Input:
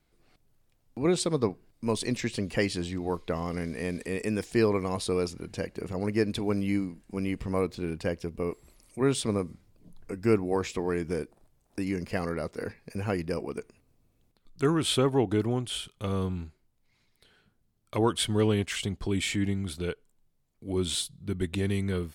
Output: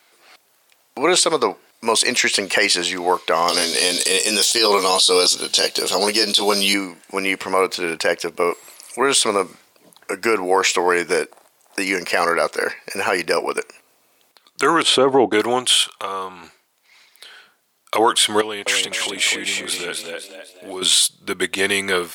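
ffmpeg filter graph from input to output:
-filter_complex "[0:a]asettb=1/sr,asplit=3[a][b][c];[a]atrim=end=3.484[d];[b]atrim=start=3.48:end=6.74,asetpts=PTS-STARTPTS,afade=t=in:d=0.004:c=qsin,afade=t=out:st=3.256:d=0.004:c=qsin,highshelf=f=2.7k:t=q:w=3:g=9,asplit=2[e][f];[f]adelay=15,volume=-4.5dB[g];[e][g]amix=inputs=2:normalize=0,atrim=end_sample=143766[h];[c]atrim=start=6.736[i];[d][h]acrossfade=d=0.004:c1=hsin:c2=qsin[j];[j][i]acrossfade=d=0.004:c1=qsin:c2=hsin,asettb=1/sr,asplit=3[k][l][m];[k]atrim=end=14.824[n];[l]atrim=start=14.82:end=15.33,asetpts=PTS-STARTPTS,afade=t=in:d=0.004:c=qsin,afade=t=out:st=0.506:d=0.004:c=qsin,lowpass=8.9k,agate=range=-33dB:threshold=-31dB:ratio=3:release=100:detection=peak,tiltshelf=f=900:g=8.5[o];[m]atrim=start=15.326[p];[n][o]acrossfade=d=0.004:c1=hsin:c2=qsin[q];[q][p]acrossfade=d=0.004:c1=qsin:c2=hsin,asettb=1/sr,asplit=3[r][s][t];[r]atrim=end=15.834[u];[s]atrim=start=15.83:end=16.44,asetpts=PTS-STARTPTS,afade=t=in:d=0.004:c=qsin,afade=t=out:st=0.606:d=0.004:c=qsin,equalizer=f=970:t=o:w=1.2:g=8,acompressor=threshold=-48dB:ratio=2:attack=3.2:release=140:knee=1:detection=peak[v];[t]atrim=start=16.436[w];[u][v]acrossfade=d=0.004:c1=hsin:c2=qsin[x];[x][w]acrossfade=d=0.004:c1=qsin:c2=hsin,asettb=1/sr,asplit=3[y][z][aa];[y]atrim=end=18.414[ab];[z]atrim=start=18.41:end=20.82,asetpts=PTS-STARTPTS,afade=t=in:d=0.004:c=qsin,afade=t=out:st=2.406:d=0.004:c=qsin,acompressor=threshold=-38dB:ratio=3:attack=3.2:release=140:knee=1:detection=peak,asplit=6[ac][ad][ae][af][ag][ah];[ad]adelay=253,afreqshift=64,volume=-4.5dB[ai];[ae]adelay=506,afreqshift=128,volume=-12.7dB[aj];[af]adelay=759,afreqshift=192,volume=-20.9dB[ak];[ag]adelay=1012,afreqshift=256,volume=-29dB[al];[ah]adelay=1265,afreqshift=320,volume=-37.2dB[am];[ac][ai][aj][ak][al][am]amix=inputs=6:normalize=0,atrim=end_sample=106281[an];[aa]atrim=start=20.816[ao];[ab][an]acrossfade=d=0.004:c1=hsin:c2=qsin[ap];[ap][ao]acrossfade=d=0.004:c1=qsin:c2=hsin,highpass=740,alimiter=level_in=25.5dB:limit=-1dB:release=50:level=0:latency=1,volume=-4dB"

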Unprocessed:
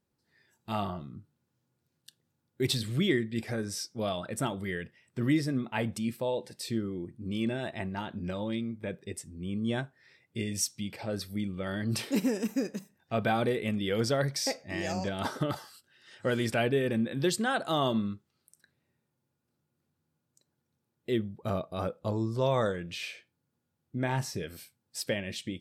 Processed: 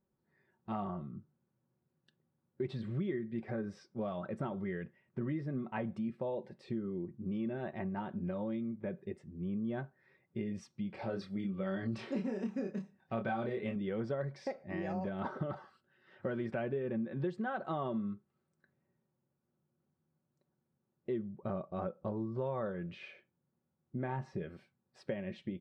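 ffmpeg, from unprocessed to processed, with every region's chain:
-filter_complex "[0:a]asettb=1/sr,asplit=3[a][b][c];[a]atrim=end=10.944[d];[b]atrim=start=10.94:end=13.76,asetpts=PTS-STARTPTS,afade=t=in:d=0.004:c=qsin,afade=t=out:st=2.816:d=0.004:c=qsin,equalizer=f=6k:t=o:w=2.2:g=10.5,asplit=2[e][f];[f]adelay=26,volume=-4dB[g];[e][g]amix=inputs=2:normalize=0,atrim=end_sample=124362[h];[c]atrim=start=13.756[i];[d][h]acrossfade=d=0.004:c1=hsin:c2=qsin[j];[j][i]acrossfade=d=0.004:c1=qsin:c2=hsin,lowpass=1.4k,aecho=1:1:5.3:0.45,acompressor=threshold=-32dB:ratio=4,volume=-2dB"

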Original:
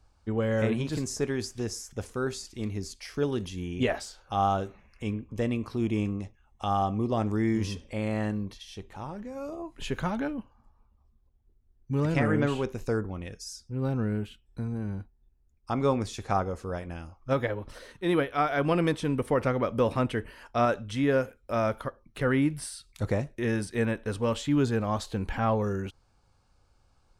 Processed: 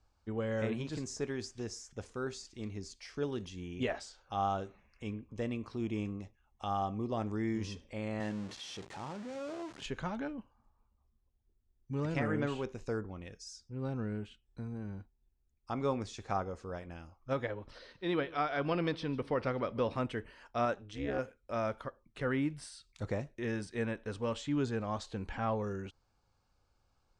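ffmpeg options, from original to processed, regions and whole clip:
-filter_complex "[0:a]asettb=1/sr,asplit=3[a][b][c];[a]atrim=end=8.204[d];[b]atrim=start=8.2:end=9.86,asetpts=PTS-STARTPTS,afade=t=in:d=0.004:c=qsin,afade=t=out:st=1.656:d=0.004:c=qsin,aeval=exprs='val(0)+0.5*0.0168*sgn(val(0))':c=same,highpass=110[e];[c]atrim=start=9.856[f];[d][e]acrossfade=d=0.004:c1=hsin:c2=qsin[g];[g][f]acrossfade=d=0.004:c1=qsin:c2=hsin,asettb=1/sr,asplit=3[h][i][j];[h]atrim=end=17.704[k];[i]atrim=start=17.7:end=19.93,asetpts=PTS-STARTPTS,afade=t=in:d=0.004:c=qsin,afade=t=out:st=2.226:d=0.004:c=qsin,highshelf=f=5.9k:t=q:w=3:g=-6.5,aecho=1:1:148:0.1,atrim=end_sample=98343[l];[j]atrim=start=19.926[m];[k][l]acrossfade=d=0.004:c1=hsin:c2=qsin[n];[n][m]acrossfade=d=0.004:c1=qsin:c2=hsin,asettb=1/sr,asplit=3[o][p][q];[o]atrim=end=20.734[r];[p]atrim=start=20.73:end=21.19,asetpts=PTS-STARTPTS,afade=t=in:d=0.004:c=qsin,afade=t=out:st=0.456:d=0.004:c=qsin,lowpass=9.4k,tremolo=f=210:d=0.919[s];[q]atrim=start=21.186[t];[r][s]acrossfade=d=0.004:c1=hsin:c2=qsin[u];[u][t]acrossfade=d=0.004:c1=qsin:c2=hsin,lowpass=f=8k:w=0.5412,lowpass=f=8k:w=1.3066,lowshelf=f=180:g=-3,volume=-7dB"

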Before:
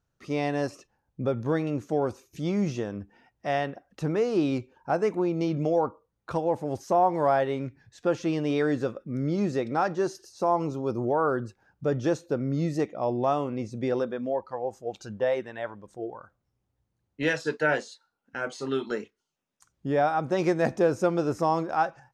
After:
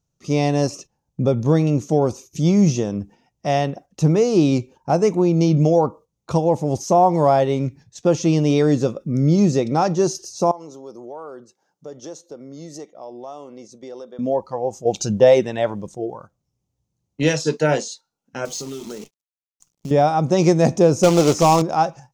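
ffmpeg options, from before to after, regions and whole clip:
-filter_complex "[0:a]asettb=1/sr,asplit=3[a][b][c];[a]atrim=end=10.514[d];[b]atrim=start=10.51:end=14.19,asetpts=PTS-STARTPTS,afade=t=in:d=0.004:c=qsin,afade=t=out:st=3.676:d=0.004:c=qsin,highpass=380,bandreject=f=2.5k:w=6.5,acompressor=threshold=-52dB:ratio=2:attack=3.2:release=140:knee=1:detection=peak[e];[c]atrim=start=14.186[f];[d][e]acrossfade=d=0.004:c1=hsin:c2=qsin[g];[g][f]acrossfade=d=0.004:c1=qsin:c2=hsin,asettb=1/sr,asplit=3[h][i][j];[h]atrim=end=14.854[k];[i]atrim=start=14.85:end=15.89,asetpts=PTS-STARTPTS,afade=t=in:d=0.004:c=qsin,afade=t=out:st=1.036:d=0.004:c=qsin,equalizer=f=1.1k:w=2.8:g=-4,acontrast=63[l];[j]atrim=start=15.886[m];[k][l]acrossfade=d=0.004:c1=hsin:c2=qsin[n];[n][m]acrossfade=d=0.004:c1=qsin:c2=hsin,asettb=1/sr,asplit=3[o][p][q];[o]atrim=end=18.454[r];[p]atrim=start=18.45:end=19.91,asetpts=PTS-STARTPTS,afade=t=in:d=0.004:c=qsin,afade=t=out:st=1.456:d=0.004:c=qsin,highpass=43,acompressor=threshold=-38dB:ratio=5:attack=3.2:release=140:knee=1:detection=peak,acrusher=bits=9:dc=4:mix=0:aa=0.000001[s];[q]atrim=start=19.906[t];[r][s]acrossfade=d=0.004:c1=hsin:c2=qsin[u];[u][t]acrossfade=d=0.004:c1=qsin:c2=hsin,asettb=1/sr,asplit=3[v][w][x];[v]atrim=end=21.034[y];[w]atrim=start=21.03:end=21.62,asetpts=PTS-STARTPTS,afade=t=in:d=0.004:c=qsin,afade=t=out:st=0.586:d=0.004:c=qsin,acrusher=bits=3:mode=log:mix=0:aa=0.000001,asplit=2[z][aa];[aa]highpass=f=720:p=1,volume=15dB,asoftclip=type=tanh:threshold=-11.5dB[ab];[z][ab]amix=inputs=2:normalize=0,lowpass=f=2.9k:p=1,volume=-6dB[ac];[x]atrim=start=21.616[ad];[y][ac]acrossfade=d=0.004:c1=hsin:c2=qsin[ae];[ae][ad]acrossfade=d=0.004:c1=qsin:c2=hsin,equalizer=f=160:t=o:w=0.67:g=7,equalizer=f=1.6k:t=o:w=0.67:g=-11,equalizer=f=6.3k:t=o:w=0.67:g=10,agate=range=-8dB:threshold=-48dB:ratio=16:detection=peak,volume=8dB"

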